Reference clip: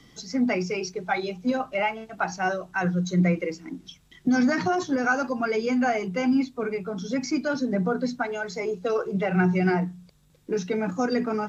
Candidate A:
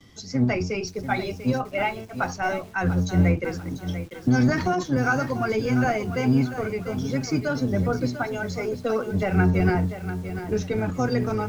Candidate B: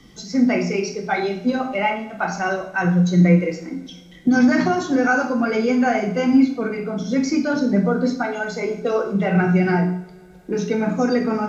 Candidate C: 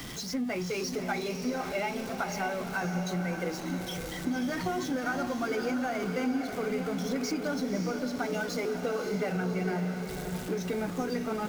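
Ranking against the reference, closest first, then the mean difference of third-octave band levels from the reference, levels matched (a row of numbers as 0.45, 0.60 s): B, A, C; 3.5, 6.5, 12.0 dB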